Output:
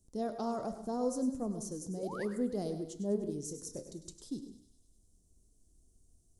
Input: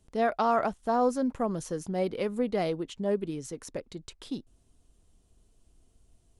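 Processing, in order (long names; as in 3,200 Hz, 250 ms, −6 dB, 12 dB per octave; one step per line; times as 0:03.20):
drawn EQ curve 320 Hz 0 dB, 2,400 Hz −21 dB, 5,900 Hz +5 dB
0:01.51–0:02.03: downward compressor, threshold −33 dBFS, peak gain reduction 6.5 dB
flanger 0.61 Hz, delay 8.1 ms, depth 8.3 ms, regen +79%
0:01.94–0:02.25: sound drawn into the spectrogram rise 320–2,200 Hz −45 dBFS
0:03.12–0:03.87: double-tracking delay 27 ms −10 dB
delay with a high-pass on its return 100 ms, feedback 63%, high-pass 1,700 Hz, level −13 dB
convolution reverb RT60 0.50 s, pre-delay 93 ms, DRR 10.5 dB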